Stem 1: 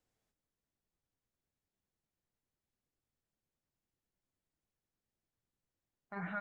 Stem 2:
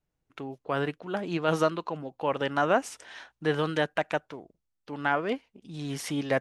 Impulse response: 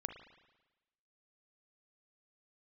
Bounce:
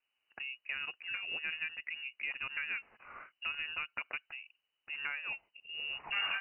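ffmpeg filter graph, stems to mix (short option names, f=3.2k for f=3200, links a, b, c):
-filter_complex "[0:a]alimiter=level_in=8dB:limit=-24dB:level=0:latency=1,volume=-8dB,volume=1dB[a];[1:a]highpass=44,acompressor=threshold=-33dB:ratio=4,volume=-9dB[b];[a][b]amix=inputs=2:normalize=0,lowpass=f=2.6k:t=q:w=0.5098,lowpass=f=2.6k:t=q:w=0.6013,lowpass=f=2.6k:t=q:w=0.9,lowpass=f=2.6k:t=q:w=2.563,afreqshift=-3000,dynaudnorm=f=100:g=5:m=5.5dB"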